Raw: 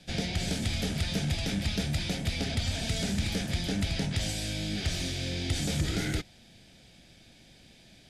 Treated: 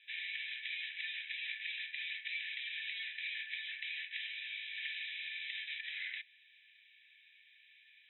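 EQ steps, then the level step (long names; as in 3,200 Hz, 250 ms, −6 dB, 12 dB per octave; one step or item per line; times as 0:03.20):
Chebyshev high-pass with heavy ripple 1,700 Hz, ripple 6 dB
linear-phase brick-wall low-pass 4,000 Hz
high-frequency loss of the air 220 metres
+5.0 dB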